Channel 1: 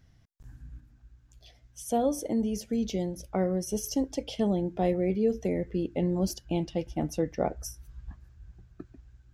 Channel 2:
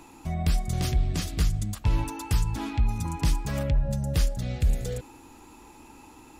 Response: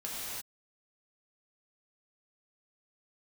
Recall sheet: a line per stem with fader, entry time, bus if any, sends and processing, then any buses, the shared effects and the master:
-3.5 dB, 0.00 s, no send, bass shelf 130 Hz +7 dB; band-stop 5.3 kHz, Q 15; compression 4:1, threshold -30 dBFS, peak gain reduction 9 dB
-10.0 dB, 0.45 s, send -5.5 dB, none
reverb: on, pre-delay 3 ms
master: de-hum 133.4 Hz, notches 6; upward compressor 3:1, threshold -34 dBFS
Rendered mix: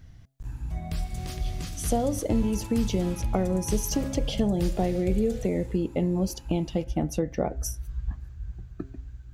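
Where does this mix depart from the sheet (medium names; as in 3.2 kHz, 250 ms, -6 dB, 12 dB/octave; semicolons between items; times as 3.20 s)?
stem 1 -3.5 dB -> +7.0 dB; master: missing upward compressor 3:1, threshold -34 dBFS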